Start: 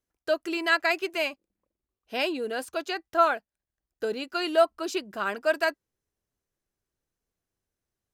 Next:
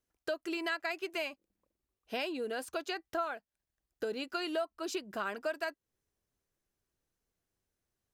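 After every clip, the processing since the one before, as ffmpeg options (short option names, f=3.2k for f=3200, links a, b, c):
-af "acompressor=threshold=-34dB:ratio=4"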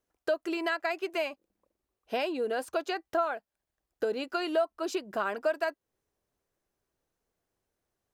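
-af "equalizer=f=660:w=0.53:g=7.5"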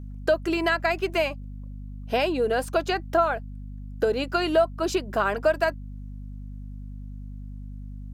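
-af "aeval=exprs='val(0)+0.00708*(sin(2*PI*50*n/s)+sin(2*PI*2*50*n/s)/2+sin(2*PI*3*50*n/s)/3+sin(2*PI*4*50*n/s)/4+sin(2*PI*5*50*n/s)/5)':c=same,volume=7dB"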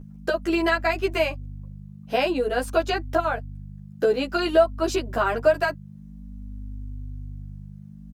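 -filter_complex "[0:a]asplit=2[a][b];[b]adelay=11.3,afreqshift=-0.51[c];[a][c]amix=inputs=2:normalize=1,volume=4dB"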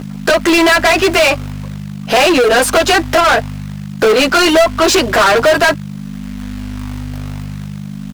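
-filter_complex "[0:a]asplit=2[a][b];[b]acrusher=bits=5:mode=log:mix=0:aa=0.000001,volume=-4.5dB[c];[a][c]amix=inputs=2:normalize=0,asplit=2[d][e];[e]highpass=f=720:p=1,volume=32dB,asoftclip=type=tanh:threshold=-3dB[f];[d][f]amix=inputs=2:normalize=0,lowpass=f=6.6k:p=1,volume=-6dB"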